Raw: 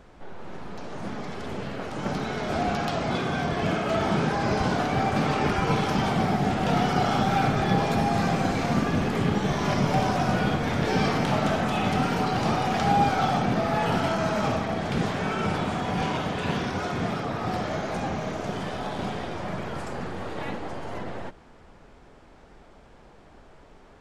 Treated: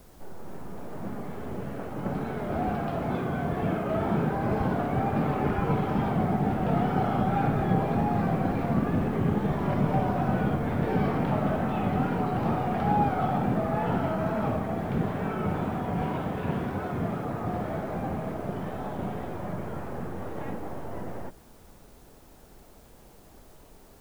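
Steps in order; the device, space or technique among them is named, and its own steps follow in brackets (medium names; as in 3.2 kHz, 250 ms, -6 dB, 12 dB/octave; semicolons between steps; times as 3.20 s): cassette deck with a dirty head (tape spacing loss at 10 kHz 45 dB; wow and flutter; white noise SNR 33 dB)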